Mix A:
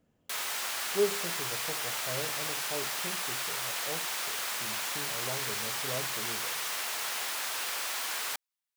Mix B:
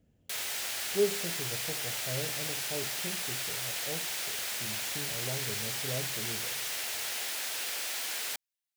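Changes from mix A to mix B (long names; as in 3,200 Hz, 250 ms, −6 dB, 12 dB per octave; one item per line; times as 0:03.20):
speech: add parametric band 64 Hz +11 dB 2 octaves
master: add parametric band 1,100 Hz −10 dB 0.81 octaves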